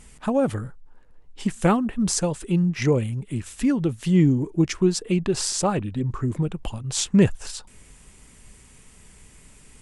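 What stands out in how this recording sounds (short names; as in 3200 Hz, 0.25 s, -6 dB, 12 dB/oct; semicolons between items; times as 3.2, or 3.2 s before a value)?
noise floor -51 dBFS; spectral tilt -5.5 dB/oct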